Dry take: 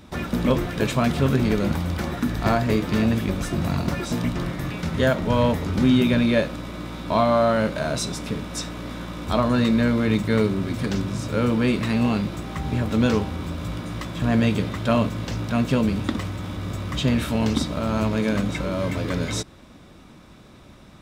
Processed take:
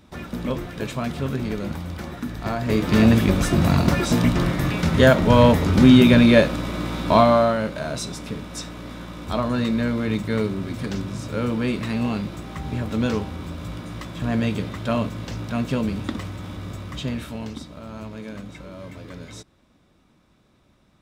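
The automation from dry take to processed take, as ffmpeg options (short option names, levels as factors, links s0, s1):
-af "volume=2,afade=t=in:st=2.56:d=0.5:silence=0.251189,afade=t=out:st=7.11:d=0.47:silence=0.354813,afade=t=out:st=16.55:d=1.05:silence=0.316228"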